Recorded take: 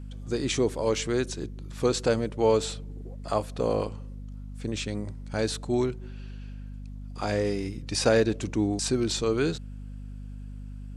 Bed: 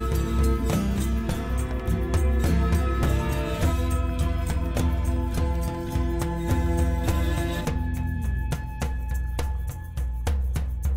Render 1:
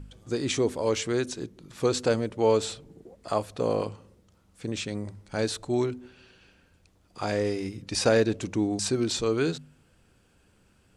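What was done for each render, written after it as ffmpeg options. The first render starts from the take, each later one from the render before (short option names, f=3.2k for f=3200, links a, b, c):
-af "bandreject=f=50:t=h:w=4,bandreject=f=100:t=h:w=4,bandreject=f=150:t=h:w=4,bandreject=f=200:t=h:w=4,bandreject=f=250:t=h:w=4"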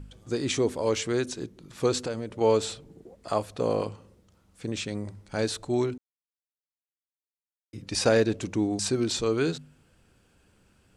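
-filter_complex "[0:a]asettb=1/sr,asplit=3[a][b][c];[a]atrim=end=2.004[d];[b]atrim=start=2:end=2.41,asetpts=PTS-STARTPTS,afade=t=in:d=0.004:c=qsin,afade=t=out:st=0.406:d=0.004:c=qsin,acompressor=threshold=-31dB:ratio=2.5:attack=3.2:release=140:knee=1:detection=peak[e];[c]atrim=start=2.406[f];[d][e]acrossfade=d=0.004:c1=hsin:c2=qsin[g];[g][f]acrossfade=d=0.004:c1=qsin:c2=hsin,asplit=3[h][i][j];[h]atrim=end=5.98,asetpts=PTS-STARTPTS,afade=t=out:st=5.976:d=0.004:c=hsin[k];[i]atrim=start=5.98:end=7.73,asetpts=PTS-STARTPTS,volume=0[l];[j]atrim=start=7.73,asetpts=PTS-STARTPTS,afade=t=in:d=0.004:c=hsin[m];[k][l][m]concat=n=3:v=0:a=1"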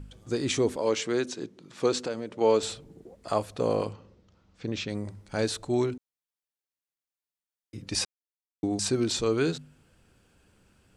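-filter_complex "[0:a]asettb=1/sr,asplit=3[a][b][c];[a]atrim=end=0.764[d];[b]atrim=start=0.76:end=2.63,asetpts=PTS-STARTPTS,afade=t=in:d=0.004:c=qsin,afade=t=out:st=1.866:d=0.004:c=qsin,highpass=180,lowpass=7.6k[e];[c]atrim=start=2.626[f];[d][e]acrossfade=d=0.004:c1=hsin:c2=qsin[g];[g][f]acrossfade=d=0.004:c1=qsin:c2=hsin,asettb=1/sr,asplit=3[h][i][j];[h]atrim=end=3.934[k];[i]atrim=start=3.93:end=4.9,asetpts=PTS-STARTPTS,afade=t=in:d=0.004:c=qsin,afade=t=out:st=0.966:d=0.004:c=qsin,lowpass=f=5.8k:w=0.5412,lowpass=f=5.8k:w=1.3066[l];[j]atrim=start=4.896[m];[k][l]acrossfade=d=0.004:c1=hsin:c2=qsin[n];[n][m]acrossfade=d=0.004:c1=qsin:c2=hsin,asplit=3[o][p][q];[o]atrim=end=8.05,asetpts=PTS-STARTPTS,afade=t=out:st=8.046:d=0.004:c=hsin[r];[p]atrim=start=8.05:end=8.63,asetpts=PTS-STARTPTS,volume=0[s];[q]atrim=start=8.63,asetpts=PTS-STARTPTS,afade=t=in:d=0.004:c=hsin[t];[r][s][t]concat=n=3:v=0:a=1"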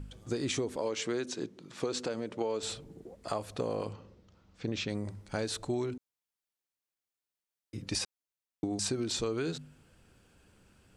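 -af "alimiter=limit=-17dB:level=0:latency=1:release=98,acompressor=threshold=-29dB:ratio=10"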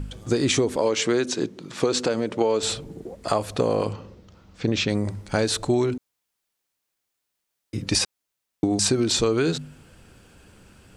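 -af "volume=11.5dB"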